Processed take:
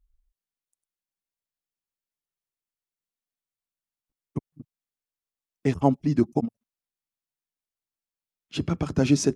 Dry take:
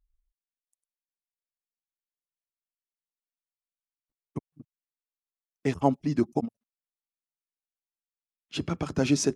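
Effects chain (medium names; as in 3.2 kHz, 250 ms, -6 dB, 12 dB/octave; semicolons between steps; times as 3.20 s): bass shelf 300 Hz +6.5 dB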